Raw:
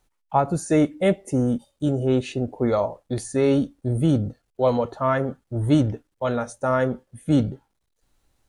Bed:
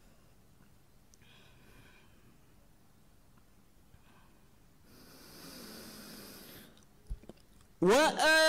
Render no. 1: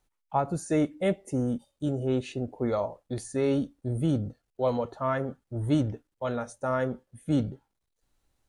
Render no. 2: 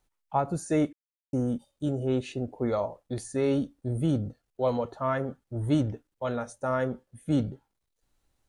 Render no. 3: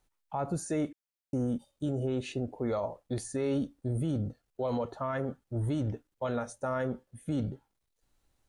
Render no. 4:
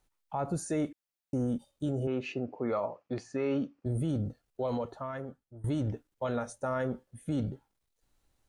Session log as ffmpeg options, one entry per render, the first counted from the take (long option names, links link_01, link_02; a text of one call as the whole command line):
ffmpeg -i in.wav -af "volume=-6.5dB" out.wav
ffmpeg -i in.wav -filter_complex "[0:a]asplit=3[link_01][link_02][link_03];[link_01]atrim=end=0.93,asetpts=PTS-STARTPTS,afade=type=out:start_time=0.926:duration=0.004:curve=hsin[link_04];[link_02]atrim=start=0.93:end=1.33,asetpts=PTS-STARTPTS,volume=0[link_05];[link_03]atrim=start=1.33,asetpts=PTS-STARTPTS,afade=type=in:duration=0.004:curve=hsin[link_06];[link_04][link_05][link_06]concat=n=3:v=0:a=1" out.wav
ffmpeg -i in.wav -af "alimiter=limit=-23.5dB:level=0:latency=1:release=38" out.wav
ffmpeg -i in.wav -filter_complex "[0:a]asettb=1/sr,asplit=3[link_01][link_02][link_03];[link_01]atrim=end=2.074[link_04];[link_02]atrim=start=2.07:end=3.86,asetpts=PTS-STARTPTS,afade=type=in:duration=0.004:curve=qsin,afade=type=out:start_time=1.786:duration=0.004:curve=qsin,highpass=150,equalizer=frequency=1200:width_type=q:width=4:gain=6,equalizer=frequency=2500:width_type=q:width=4:gain=6,equalizer=frequency=3700:width_type=q:width=4:gain=-10,lowpass=frequency=5300:width=0.5412,lowpass=frequency=5300:width=1.3066[link_05];[link_03]atrim=start=3.856[link_06];[link_04][link_05]acrossfade=duration=0.004:curve1=hsin:curve2=qsin[link_07];[link_07][link_06]acrossfade=duration=0.004:curve1=qsin:curve2=hsin,asplit=2[link_08][link_09];[link_08]atrim=end=5.64,asetpts=PTS-STARTPTS,afade=type=out:start_time=4.61:duration=1.03:silence=0.0944061[link_10];[link_09]atrim=start=5.64,asetpts=PTS-STARTPTS,afade=type=in:duration=0.004:curve=hsin:silence=0.0944061[link_11];[link_10][link_11]concat=n=2:v=0:a=1" out.wav